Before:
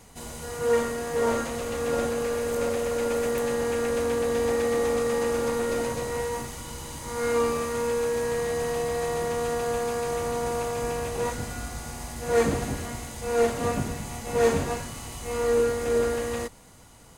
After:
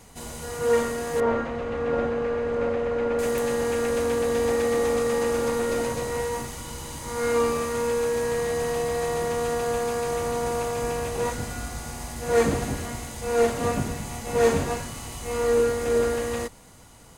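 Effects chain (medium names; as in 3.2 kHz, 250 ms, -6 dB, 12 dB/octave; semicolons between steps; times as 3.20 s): 1.20–3.19 s: low-pass 2.2 kHz 12 dB/octave; trim +1.5 dB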